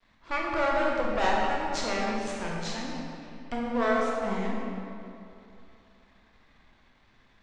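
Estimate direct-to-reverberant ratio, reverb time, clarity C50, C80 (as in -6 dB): -3.5 dB, 2.7 s, -1.5 dB, 0.5 dB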